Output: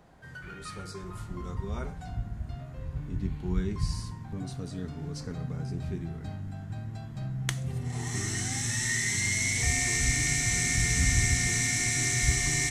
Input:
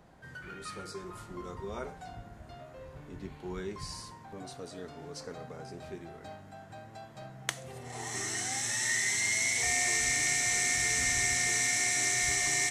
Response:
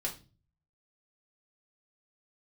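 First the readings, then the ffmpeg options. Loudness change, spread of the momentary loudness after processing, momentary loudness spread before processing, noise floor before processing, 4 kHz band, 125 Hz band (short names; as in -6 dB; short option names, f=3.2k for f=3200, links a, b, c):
-1.0 dB, 15 LU, 20 LU, -51 dBFS, +0.5 dB, +15.0 dB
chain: -filter_complex "[0:a]asubboost=boost=9.5:cutoff=180,asplit=2[a][b];[1:a]atrim=start_sample=2205[c];[b][c]afir=irnorm=-1:irlink=0,volume=-18.5dB[d];[a][d]amix=inputs=2:normalize=0"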